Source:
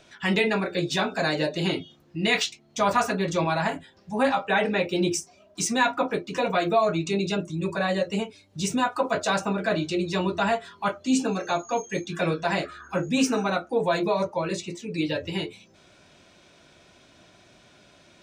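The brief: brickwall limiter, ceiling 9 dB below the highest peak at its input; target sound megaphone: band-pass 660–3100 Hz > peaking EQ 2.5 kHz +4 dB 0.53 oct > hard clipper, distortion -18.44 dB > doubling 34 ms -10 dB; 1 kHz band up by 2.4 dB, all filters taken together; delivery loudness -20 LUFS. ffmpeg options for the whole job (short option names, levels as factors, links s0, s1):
-filter_complex "[0:a]equalizer=f=1000:t=o:g=4.5,alimiter=limit=0.158:level=0:latency=1,highpass=660,lowpass=3100,equalizer=f=2500:t=o:w=0.53:g=4,asoftclip=type=hard:threshold=0.0794,asplit=2[s0][s1];[s1]adelay=34,volume=0.316[s2];[s0][s2]amix=inputs=2:normalize=0,volume=3.35"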